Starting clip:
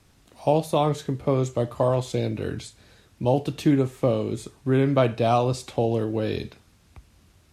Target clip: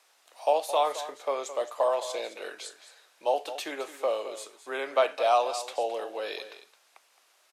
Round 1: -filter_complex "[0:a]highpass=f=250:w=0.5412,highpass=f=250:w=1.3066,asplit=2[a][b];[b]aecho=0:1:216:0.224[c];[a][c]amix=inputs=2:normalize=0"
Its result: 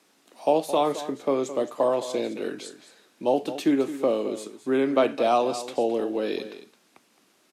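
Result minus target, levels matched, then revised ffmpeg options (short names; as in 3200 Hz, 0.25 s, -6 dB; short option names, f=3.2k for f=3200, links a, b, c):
250 Hz band +16.5 dB
-filter_complex "[0:a]highpass=f=570:w=0.5412,highpass=f=570:w=1.3066,asplit=2[a][b];[b]aecho=0:1:216:0.224[c];[a][c]amix=inputs=2:normalize=0"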